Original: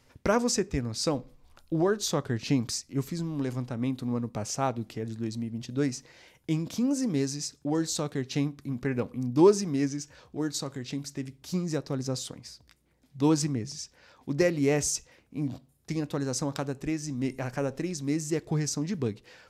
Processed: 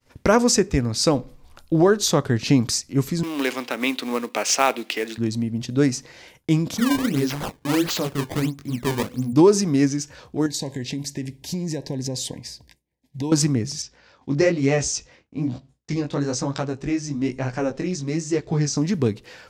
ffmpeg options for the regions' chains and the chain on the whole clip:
-filter_complex "[0:a]asettb=1/sr,asplit=3[a][b][c];[a]atrim=end=3.234[d];[b]atrim=start=3.23:end=5.18,asetpts=PTS-STARTPTS,afade=t=in:d=0.004:c=qsin,afade=t=out:st=1.946:d=0.004:c=qsin,highpass=f=290:w=0.5412,highpass=f=290:w=1.3066,equalizer=f=2.6k:w=0.77:g=14.5,acrusher=bits=4:mode=log:mix=0:aa=0.000001[e];[c]atrim=start=5.176[f];[d][e]acrossfade=d=0.004:c1=hsin:c2=qsin[g];[g][f]acrossfade=d=0.004:c1=qsin:c2=hsin,asettb=1/sr,asplit=3[h][i][j];[h]atrim=end=6.774[k];[i]atrim=start=6.77:end=9.33,asetpts=PTS-STARTPTS,afade=t=in:d=0.004:c=qsin,afade=t=out:st=2.556:d=0.004:c=qsin,flanger=delay=15.5:depth=6.6:speed=2.5,acrusher=samples=19:mix=1:aa=0.000001:lfo=1:lforange=30.4:lforate=1.5[l];[j]atrim=start=9.326[m];[k][l]acrossfade=d=0.004:c1=hsin:c2=qsin[n];[n][m]acrossfade=d=0.004:c1=qsin:c2=hsin,asettb=1/sr,asplit=3[o][p][q];[o]atrim=end=10.464[r];[p]atrim=start=10.46:end=13.32,asetpts=PTS-STARTPTS,afade=t=in:d=0.004:c=qsin,afade=t=out:st=2.856:d=0.004:c=qsin,acompressor=threshold=-32dB:ratio=6:attack=3.2:release=140:knee=1:detection=peak,asuperstop=centerf=1300:order=20:qfactor=2.4[s];[q]atrim=start=13.316[t];[r][s]acrossfade=d=0.004:c1=hsin:c2=qsin[u];[u][t]acrossfade=d=0.004:c1=qsin:c2=hsin,asettb=1/sr,asplit=3[v][w][x];[v]atrim=end=13.824[y];[w]atrim=start=13.82:end=18.77,asetpts=PTS-STARTPTS,afade=t=in:d=0.004:c=qsin,afade=t=out:st=4.946:d=0.004:c=qsin,lowpass=f=7.1k:w=0.5412,lowpass=f=7.1k:w=1.3066,flanger=delay=15:depth=7.1:speed=1.1[z];[x]atrim=start=18.766[aa];[y][z]acrossfade=d=0.004:c1=hsin:c2=qsin[ab];[ab][aa]acrossfade=d=0.004:c1=qsin:c2=hsin,agate=range=-33dB:threshold=-55dB:ratio=3:detection=peak,alimiter=level_in=14dB:limit=-1dB:release=50:level=0:latency=1,volume=-5dB"

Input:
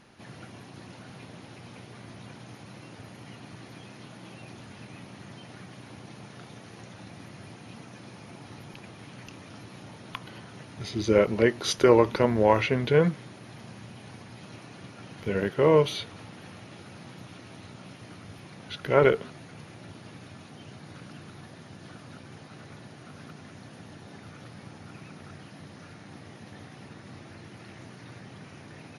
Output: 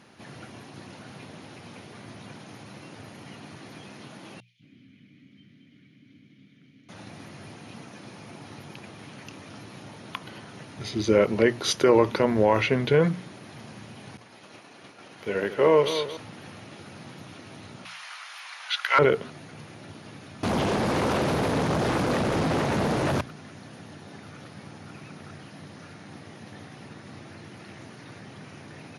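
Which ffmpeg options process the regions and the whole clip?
-filter_complex "[0:a]asettb=1/sr,asplit=3[a][b][c];[a]atrim=end=4.404[d];[b]atrim=start=4.4:end=6.89,asetpts=PTS-STARTPTS,afade=t=in:d=0.004:c=qsin,afade=t=out:st=2.486:d=0.004:c=qsin,asplit=3[e][f][g];[e]bandpass=f=270:t=q:w=8,volume=0dB[h];[f]bandpass=f=2.29k:t=q:w=8,volume=-6dB[i];[g]bandpass=f=3.01k:t=q:w=8,volume=-9dB[j];[h][i][j]amix=inputs=3:normalize=0,lowshelf=f=210:t=q:w=1.5:g=9.5,acrossover=split=220|2500[k][l][m];[k]adelay=190[n];[l]adelay=220[o];[n][o][m]amix=inputs=3:normalize=0,atrim=end_sample=109809[p];[c]atrim=start=6.886[q];[d][p]acrossfade=d=0.004:c1=hsin:c2=qsin[r];[r][q]acrossfade=d=0.004:c1=qsin:c2=hsin,asettb=1/sr,asplit=3[s][t][u];[s]atrim=end=14.174[v];[t]atrim=start=14.17:end=16.17,asetpts=PTS-STARTPTS,afade=t=in:d=0.004:c=qsin,afade=t=out:st=1.996:d=0.004:c=qsin,agate=range=-33dB:threshold=-43dB:ratio=3:release=100:detection=peak,bass=f=250:g=-11,treble=f=4k:g=-1,aecho=1:1:225|450|675|900:0.282|0.113|0.0451|0.018,atrim=end_sample=88200[w];[u]atrim=start=16.166[x];[v][w]acrossfade=d=0.004:c1=hsin:c2=qsin[y];[y][x]acrossfade=d=0.004:c1=qsin:c2=hsin,asettb=1/sr,asplit=3[z][aa][ab];[z]atrim=end=17.854[ac];[aa]atrim=start=17.85:end=18.99,asetpts=PTS-STARTPTS,afade=t=in:d=0.004:c=qsin,afade=t=out:st=1.136:d=0.004:c=qsin,highpass=f=960:w=0.5412,highpass=f=960:w=1.3066,asplit=2[ad][ae];[ae]highpass=f=720:p=1,volume=15dB,asoftclip=type=tanh:threshold=-6.5dB[af];[ad][af]amix=inputs=2:normalize=0,lowpass=f=5.6k:p=1,volume=-6dB[ag];[ab]atrim=start=18.986[ah];[ac][ag]acrossfade=d=0.004:c1=hsin:c2=qsin[ai];[ai][ah]acrossfade=d=0.004:c1=qsin:c2=hsin,asettb=1/sr,asplit=3[aj][ak][al];[aj]atrim=end=20.434[am];[ak]atrim=start=20.43:end=23.21,asetpts=PTS-STARTPTS,afade=t=in:d=0.004:c=qsin,afade=t=out:st=2.776:d=0.004:c=qsin,equalizer=f=160:w=0.34:g=14.5,bandreject=f=50:t=h:w=6,bandreject=f=100:t=h:w=6,bandreject=f=150:t=h:w=6,bandreject=f=200:t=h:w=6,bandreject=f=250:t=h:w=6,aeval=exprs='0.0668*sin(PI/2*5.01*val(0)/0.0668)':c=same[an];[al]atrim=start=23.206[ao];[am][an]acrossfade=d=0.004:c1=hsin:c2=qsin[ap];[ap][ao]acrossfade=d=0.004:c1=qsin:c2=hsin,highpass=81,bandreject=f=60:t=h:w=6,bandreject=f=120:t=h:w=6,bandreject=f=180:t=h:w=6,alimiter=level_in=10.5dB:limit=-1dB:release=50:level=0:latency=1,volume=-8dB"

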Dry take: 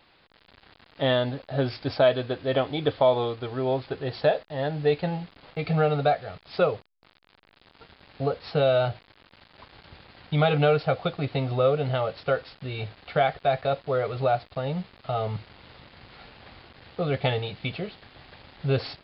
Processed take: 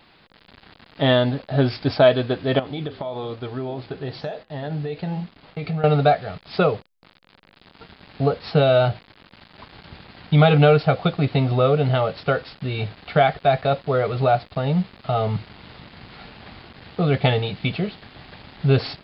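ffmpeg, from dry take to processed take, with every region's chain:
-filter_complex "[0:a]asettb=1/sr,asplit=3[a][b][c];[a]atrim=end=2.594[d];[b]atrim=start=2.59:end=5.84,asetpts=PTS-STARTPTS,afade=t=in:d=0.004:c=qsin,afade=t=out:st=3.246:d=0.004:c=qsin,acompressor=threshold=-26dB:ratio=10:attack=3.2:release=140:knee=1:detection=peak,flanger=delay=6.6:depth=7.9:regen=-85:speed=1.1:shape=sinusoidal[e];[c]atrim=start=5.836[f];[d][e]acrossfade=d=0.004:c1=hsin:c2=qsin[g];[g][f]acrossfade=d=0.004:c1=qsin:c2=hsin,equalizer=f=190:t=o:w=0.98:g=5.5,bandreject=f=530:w=15,volume=5.5dB"

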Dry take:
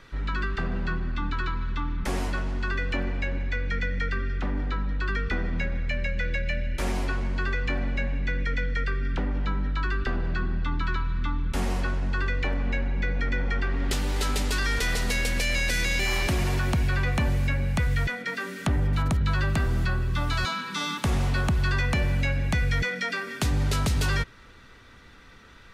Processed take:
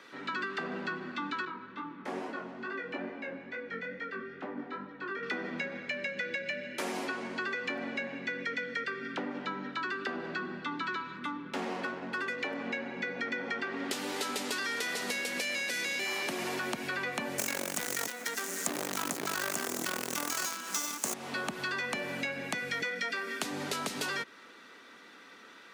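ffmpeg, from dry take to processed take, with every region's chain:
-filter_complex "[0:a]asettb=1/sr,asplit=3[a][b][c];[a]atrim=end=1.454[d];[b]atrim=start=1.45:end=5.23,asetpts=PTS-STARTPTS,afade=t=in:d=0.004:c=qsin,afade=t=out:st=3.776:d=0.004:c=qsin,lowpass=f=1.3k:p=1,flanger=delay=18:depth=5.2:speed=2.3[e];[c]atrim=start=5.226[f];[d][e]acrossfade=d=0.004:c1=hsin:c2=qsin[g];[g][f]acrossfade=d=0.004:c1=qsin:c2=hsin,asettb=1/sr,asplit=3[h][i][j];[h]atrim=end=11.164[k];[i]atrim=start=11.16:end=12.38,asetpts=PTS-STARTPTS,afade=t=in:d=0.004:c=qsin,afade=t=out:st=1.216:d=0.004:c=qsin,highshelf=f=10k:g=-5,adynamicsmooth=sensitivity=7:basefreq=3.1k[l];[j]atrim=start=12.376[m];[k][l]acrossfade=d=0.004:c1=hsin:c2=qsin[n];[n][m]acrossfade=d=0.004:c1=qsin:c2=hsin,asettb=1/sr,asplit=3[o][p][q];[o]atrim=end=17.384[r];[p]atrim=start=17.38:end=21.14,asetpts=PTS-STARTPTS,afade=t=in:d=0.004:c=qsin,afade=t=out:st=3.756:d=0.004:c=qsin,highshelf=f=5k:t=q:w=3:g=10.5,acontrast=48,acrusher=bits=4:dc=4:mix=0:aa=0.000001[s];[q]atrim=start=21.136[t];[r][s]acrossfade=d=0.004:c1=hsin:c2=qsin[u];[u][t]acrossfade=d=0.004:c1=qsin:c2=hsin,highpass=f=240:w=0.5412,highpass=f=240:w=1.3066,acompressor=threshold=-31dB:ratio=6"

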